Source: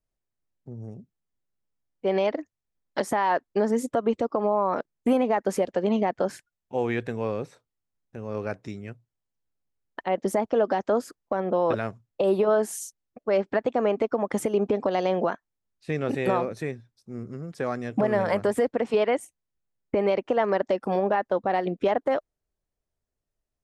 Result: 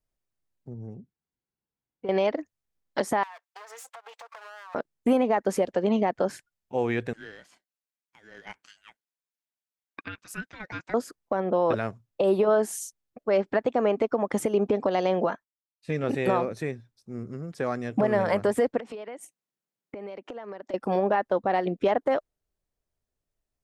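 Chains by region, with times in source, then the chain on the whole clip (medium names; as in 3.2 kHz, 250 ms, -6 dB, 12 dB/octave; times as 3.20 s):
0.74–2.09 s: treble shelf 4.6 kHz -11.5 dB + compression, threshold -30 dBFS + comb of notches 610 Hz
3.23–4.75 s: comb filter that takes the minimum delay 4.4 ms + Bessel high-pass 1.1 kHz, order 6 + compression 16:1, threshold -40 dBFS
7.13–10.94 s: Chebyshev high-pass 850 Hz, order 5 + ring modulator 650 Hz
15.26–16.04 s: comb of notches 370 Hz + expander -58 dBFS
18.78–20.74 s: high-pass 150 Hz 24 dB/octave + compression 10:1, threshold -35 dBFS
whole clip: none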